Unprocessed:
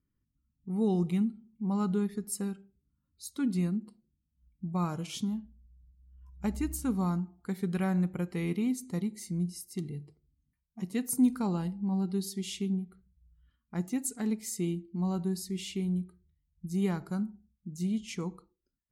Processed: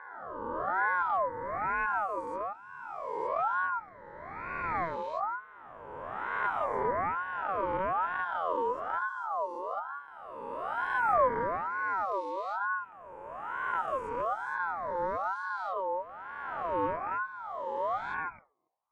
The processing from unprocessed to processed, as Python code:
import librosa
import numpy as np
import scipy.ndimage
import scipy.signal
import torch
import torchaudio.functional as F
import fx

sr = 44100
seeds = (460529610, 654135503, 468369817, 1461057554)

y = fx.spec_swells(x, sr, rise_s=2.37)
y = scipy.signal.sosfilt(scipy.signal.butter(2, 1200.0, 'lowpass', fs=sr, output='sos'), y)
y = fx.ring_lfo(y, sr, carrier_hz=990.0, swing_pct=30, hz=1.1)